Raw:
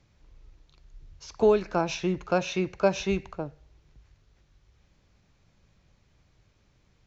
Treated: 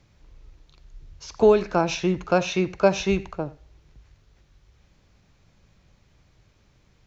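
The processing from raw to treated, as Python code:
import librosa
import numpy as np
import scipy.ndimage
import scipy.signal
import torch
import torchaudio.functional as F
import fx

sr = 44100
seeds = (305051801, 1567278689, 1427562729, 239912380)

y = x + 10.0 ** (-19.5 / 20.0) * np.pad(x, (int(84 * sr / 1000.0), 0))[:len(x)]
y = y * librosa.db_to_amplitude(4.5)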